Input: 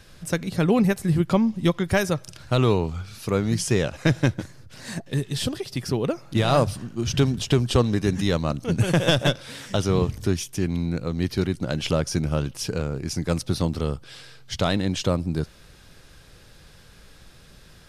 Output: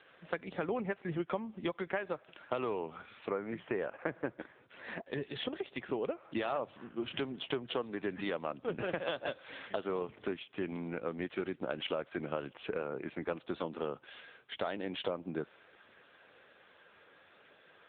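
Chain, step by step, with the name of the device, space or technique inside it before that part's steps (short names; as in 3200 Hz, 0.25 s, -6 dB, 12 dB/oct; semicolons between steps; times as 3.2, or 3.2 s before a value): 3.27–4.37 LPF 2600 Hz -> 1500 Hz 12 dB/oct; 10.68–11.24 notches 50/100/150 Hz; 14.65–15.15 dynamic EQ 1200 Hz, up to -5 dB, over -47 dBFS, Q 6.1; voicemail (BPF 420–3000 Hz; compressor 6:1, threshold -31 dBFS, peak gain reduction 14 dB; AMR-NB 6.7 kbps 8000 Hz)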